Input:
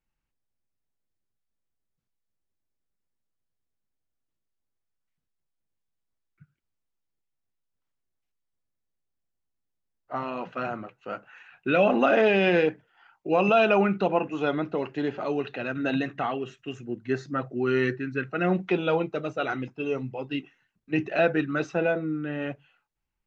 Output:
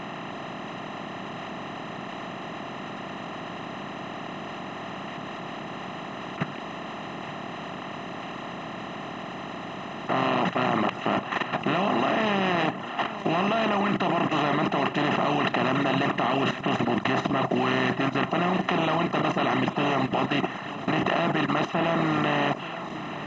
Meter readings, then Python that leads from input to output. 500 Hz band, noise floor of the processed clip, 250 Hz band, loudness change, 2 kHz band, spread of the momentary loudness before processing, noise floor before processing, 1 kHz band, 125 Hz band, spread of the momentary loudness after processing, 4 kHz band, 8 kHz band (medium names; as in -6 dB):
-2.0 dB, -37 dBFS, +2.5 dB, -1.0 dB, +2.5 dB, 15 LU, -81 dBFS, +6.0 dB, +4.5 dB, 12 LU, +8.5 dB, no reading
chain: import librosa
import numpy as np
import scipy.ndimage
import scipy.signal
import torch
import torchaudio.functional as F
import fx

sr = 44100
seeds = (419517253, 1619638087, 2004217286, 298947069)

p1 = fx.bin_compress(x, sr, power=0.2)
p2 = fx.dereverb_blind(p1, sr, rt60_s=0.89)
p3 = p2 + 0.74 * np.pad(p2, (int(1.0 * sr / 1000.0), 0))[:len(p2)]
p4 = fx.level_steps(p3, sr, step_db=12)
y = p4 + fx.echo_single(p4, sr, ms=876, db=-15.0, dry=0)